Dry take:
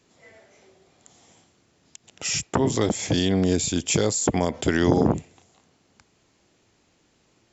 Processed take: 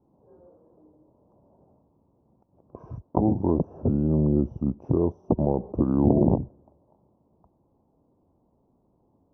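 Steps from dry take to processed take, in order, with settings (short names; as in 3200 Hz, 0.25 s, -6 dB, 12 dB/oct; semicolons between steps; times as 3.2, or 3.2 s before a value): elliptic low-pass 1200 Hz, stop band 50 dB; wide varispeed 0.806×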